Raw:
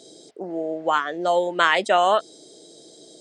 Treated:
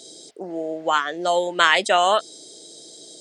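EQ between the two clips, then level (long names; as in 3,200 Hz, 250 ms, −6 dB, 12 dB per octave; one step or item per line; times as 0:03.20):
high-shelf EQ 2,300 Hz +9.5 dB
−1.0 dB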